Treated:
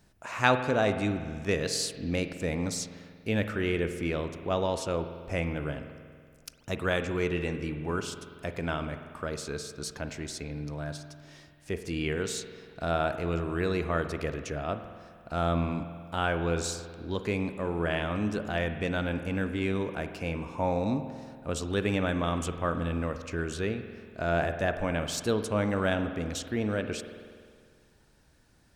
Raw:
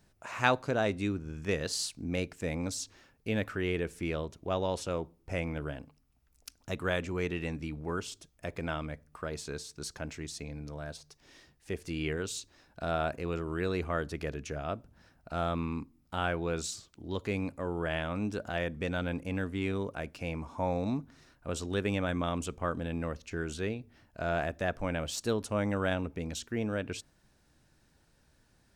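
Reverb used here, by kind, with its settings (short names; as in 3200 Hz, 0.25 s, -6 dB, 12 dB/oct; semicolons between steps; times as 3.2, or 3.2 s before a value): spring tank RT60 2 s, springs 47 ms, chirp 75 ms, DRR 8.5 dB; gain +3 dB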